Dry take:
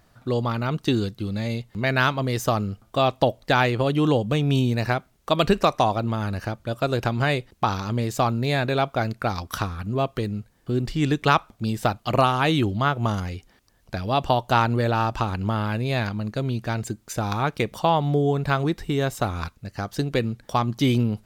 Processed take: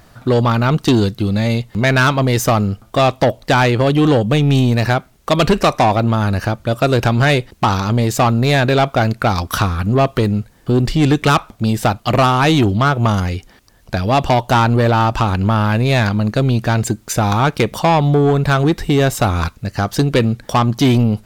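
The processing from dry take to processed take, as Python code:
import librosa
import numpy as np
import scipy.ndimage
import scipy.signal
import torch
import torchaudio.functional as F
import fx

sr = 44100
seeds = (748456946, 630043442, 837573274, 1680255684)

p1 = fx.rider(x, sr, range_db=10, speed_s=2.0)
p2 = x + (p1 * 10.0 ** (-0.5 / 20.0))
p3 = 10.0 ** (-12.5 / 20.0) * np.tanh(p2 / 10.0 ** (-12.5 / 20.0))
y = p3 * 10.0 ** (5.5 / 20.0)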